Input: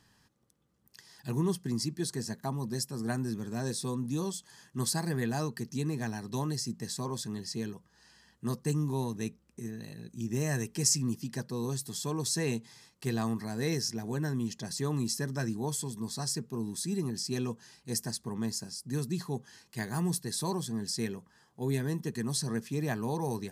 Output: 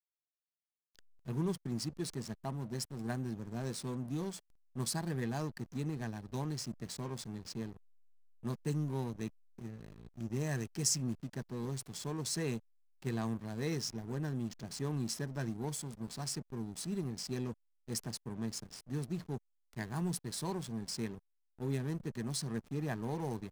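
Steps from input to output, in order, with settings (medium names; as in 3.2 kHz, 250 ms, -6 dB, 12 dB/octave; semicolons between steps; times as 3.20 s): hysteresis with a dead band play -35.5 dBFS; trim -4.5 dB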